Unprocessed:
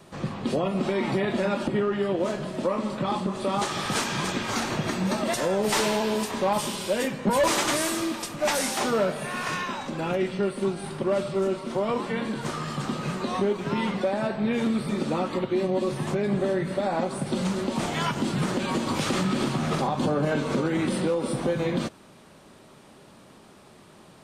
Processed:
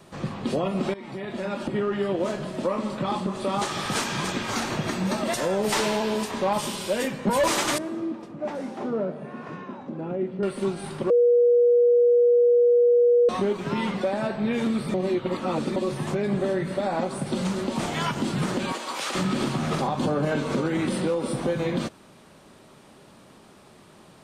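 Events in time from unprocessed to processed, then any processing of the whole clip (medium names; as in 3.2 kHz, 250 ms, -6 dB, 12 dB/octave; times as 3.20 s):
0.94–1.95 s: fade in, from -17 dB
5.74–6.63 s: treble shelf 9.8 kHz -6 dB
7.78–10.43 s: band-pass filter 270 Hz, Q 0.8
11.10–13.29 s: bleep 481 Hz -14.5 dBFS
14.94–15.76 s: reverse
18.72–19.15 s: high-pass 630 Hz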